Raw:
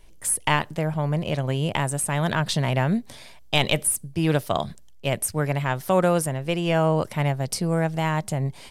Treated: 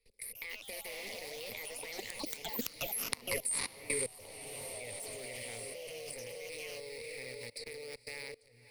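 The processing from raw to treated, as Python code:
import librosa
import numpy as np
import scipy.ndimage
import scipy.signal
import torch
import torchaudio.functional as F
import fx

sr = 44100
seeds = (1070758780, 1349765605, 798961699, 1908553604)

p1 = fx.doppler_pass(x, sr, speed_mps=40, closest_m=4.3, pass_at_s=3.18)
p2 = fx.quant_dither(p1, sr, seeds[0], bits=8, dither='none')
p3 = p1 + (p2 * librosa.db_to_amplitude(-3.0))
p4 = fx.peak_eq(p3, sr, hz=2700.0, db=7.0, octaves=1.7)
p5 = fx.fixed_phaser(p4, sr, hz=430.0, stages=4)
p6 = fx.cheby_harmonics(p5, sr, harmonics=(3,), levels_db=(-8,), full_scale_db=5.0)
p7 = fx.ripple_eq(p6, sr, per_octave=0.91, db=17)
p8 = fx.gate_flip(p7, sr, shuts_db=-8.0, range_db=-32)
p9 = fx.echo_diffused(p8, sr, ms=517, feedback_pct=43, wet_db=-8.5)
p10 = fx.level_steps(p9, sr, step_db=23)
p11 = fx.echo_pitch(p10, sr, ms=179, semitones=4, count=3, db_per_echo=-6.0)
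p12 = fx.band_squash(p11, sr, depth_pct=70)
y = p12 * librosa.db_to_amplitude(18.0)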